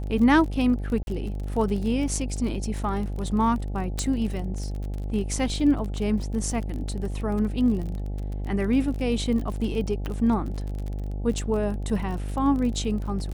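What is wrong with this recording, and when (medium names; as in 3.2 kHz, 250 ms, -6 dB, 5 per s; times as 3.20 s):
buzz 50 Hz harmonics 17 -30 dBFS
crackle 37 per s -31 dBFS
1.03–1.07 s: dropout 41 ms
3.99 s: pop -12 dBFS
10.06 s: pop -18 dBFS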